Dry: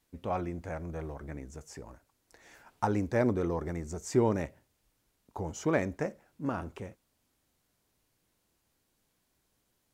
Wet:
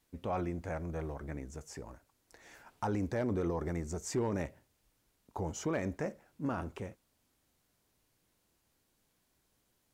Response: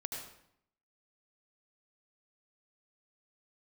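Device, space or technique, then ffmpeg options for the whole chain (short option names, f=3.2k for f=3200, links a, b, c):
clipper into limiter: -af "asoftclip=type=hard:threshold=-18dB,alimiter=level_in=1.5dB:limit=-24dB:level=0:latency=1:release=13,volume=-1.5dB"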